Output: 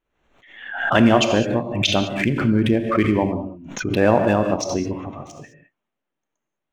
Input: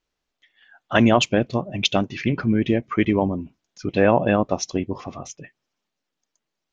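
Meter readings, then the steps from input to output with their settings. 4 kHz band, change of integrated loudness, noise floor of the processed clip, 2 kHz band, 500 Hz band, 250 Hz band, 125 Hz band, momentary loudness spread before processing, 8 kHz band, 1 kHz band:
+2.0 dB, +2.0 dB, -82 dBFS, +3.0 dB, +2.0 dB, +2.0 dB, +2.0 dB, 16 LU, n/a, +2.0 dB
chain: Wiener smoothing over 9 samples; non-linear reverb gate 0.23 s flat, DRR 6 dB; backwards sustainer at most 71 dB/s

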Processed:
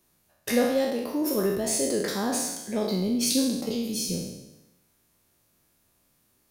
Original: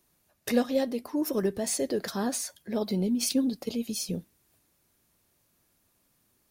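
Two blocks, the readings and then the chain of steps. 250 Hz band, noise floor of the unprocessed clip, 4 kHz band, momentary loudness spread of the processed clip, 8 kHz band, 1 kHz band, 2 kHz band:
+2.0 dB, -71 dBFS, +5.0 dB, 7 LU, +4.5 dB, +4.0 dB, +5.0 dB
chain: spectral trails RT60 0.96 s

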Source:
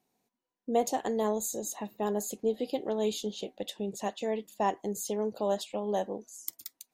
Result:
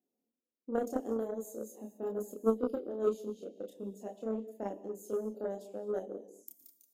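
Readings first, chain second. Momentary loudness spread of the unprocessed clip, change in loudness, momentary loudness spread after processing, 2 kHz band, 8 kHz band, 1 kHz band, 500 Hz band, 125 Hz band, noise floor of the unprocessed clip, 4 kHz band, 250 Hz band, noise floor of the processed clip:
8 LU, -4.5 dB, 13 LU, under -10 dB, -17.0 dB, -11.5 dB, -3.5 dB, n/a, -85 dBFS, under -20 dB, -3.5 dB, under -85 dBFS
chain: graphic EQ 125/250/500/1000/2000/4000/8000 Hz -10/+7/+7/-11/-12/-12/-4 dB; chorus voices 4, 0.4 Hz, delay 29 ms, depth 2.7 ms; HPF 55 Hz; non-linear reverb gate 0.27 s flat, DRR 10.5 dB; added harmonics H 3 -14 dB, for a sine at -15.5 dBFS

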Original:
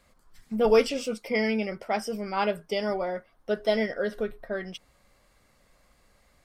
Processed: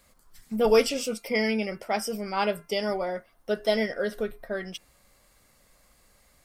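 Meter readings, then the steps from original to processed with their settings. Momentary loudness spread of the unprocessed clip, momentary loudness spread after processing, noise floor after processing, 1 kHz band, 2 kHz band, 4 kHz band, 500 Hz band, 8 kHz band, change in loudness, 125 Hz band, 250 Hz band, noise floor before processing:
13 LU, 13 LU, -62 dBFS, 0.0 dB, +1.0 dB, +3.0 dB, 0.0 dB, +6.5 dB, +0.5 dB, 0.0 dB, 0.0 dB, -64 dBFS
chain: high shelf 6400 Hz +11.5 dB; de-hum 343.8 Hz, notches 8

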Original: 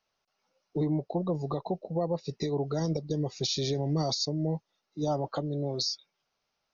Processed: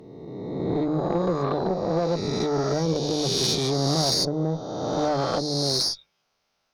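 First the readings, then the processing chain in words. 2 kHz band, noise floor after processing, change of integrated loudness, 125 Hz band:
+13.0 dB, -74 dBFS, +7.0 dB, +3.5 dB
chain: spectral swells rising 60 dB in 1.93 s; tube stage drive 21 dB, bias 0.55; notches 50/100/150 Hz; gain +6 dB

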